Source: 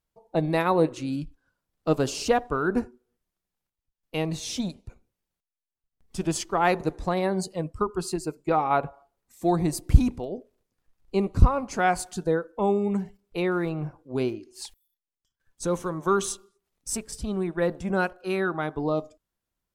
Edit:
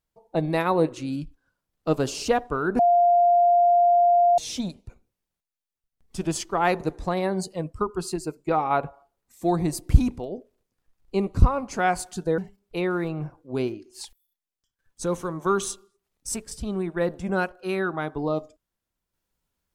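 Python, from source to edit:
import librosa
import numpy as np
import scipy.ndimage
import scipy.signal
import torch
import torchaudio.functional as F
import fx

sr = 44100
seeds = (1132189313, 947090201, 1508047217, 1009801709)

y = fx.edit(x, sr, fx.bleep(start_s=2.79, length_s=1.59, hz=699.0, db=-14.5),
    fx.cut(start_s=12.38, length_s=0.61), tone=tone)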